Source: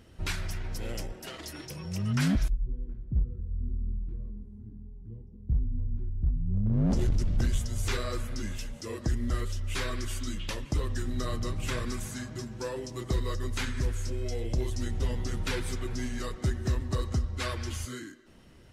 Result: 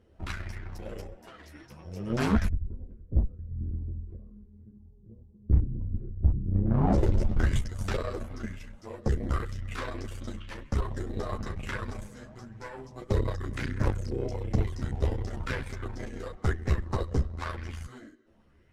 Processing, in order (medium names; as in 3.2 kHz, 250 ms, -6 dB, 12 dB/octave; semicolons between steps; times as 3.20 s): treble shelf 2.6 kHz -10.5 dB; Chebyshev shaper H 2 -8 dB, 3 -13 dB, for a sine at -19.5 dBFS; chorus voices 6, 1.5 Hz, delay 12 ms, depth 3 ms; sweeping bell 0.99 Hz 450–2100 Hz +8 dB; trim +4.5 dB